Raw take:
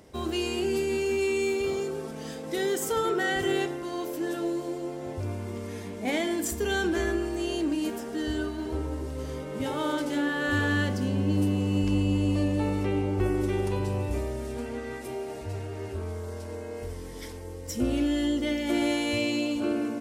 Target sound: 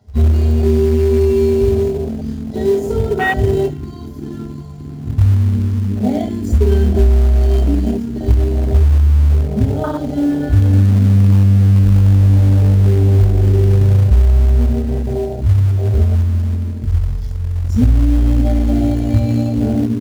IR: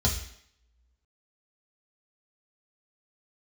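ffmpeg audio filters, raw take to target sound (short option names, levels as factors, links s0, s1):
-filter_complex "[0:a]asettb=1/sr,asplit=3[s0][s1][s2];[s0]atrim=end=6.604[s3];[s1]atrim=start=6.6:end=7.91,asetpts=PTS-STARTPTS,afade=t=in:d=0.004:c=qsin,afade=t=out:st=1.306:d=0.004:c=qsin,aecho=1:1:4.5:0.45,atrim=end_sample=57771[s4];[s2]atrim=start=7.906[s5];[s3][s4]acrossfade=d=0.004:c1=hsin:c2=qsin[s6];[s6][s5]acrossfade=d=0.004:c1=qsin:c2=hsin,asplit=2[s7][s8];[s8]adelay=111,lowpass=f=3800:p=1,volume=0.178,asplit=2[s9][s10];[s10]adelay=111,lowpass=f=3800:p=1,volume=0.53,asplit=2[s11][s12];[s12]adelay=111,lowpass=f=3800:p=1,volume=0.53,asplit=2[s13][s14];[s14]adelay=111,lowpass=f=3800:p=1,volume=0.53,asplit=2[s15][s16];[s16]adelay=111,lowpass=f=3800:p=1,volume=0.53[s17];[s7][s9][s11][s13][s15][s17]amix=inputs=6:normalize=0[s18];[1:a]atrim=start_sample=2205,atrim=end_sample=3969[s19];[s18][s19]afir=irnorm=-1:irlink=0,afwtdn=0.178,asplit=2[s20][s21];[s21]acrusher=bits=3:mode=log:mix=0:aa=0.000001,volume=0.355[s22];[s20][s22]amix=inputs=2:normalize=0,acompressor=threshold=0.501:ratio=6,volume=0.794"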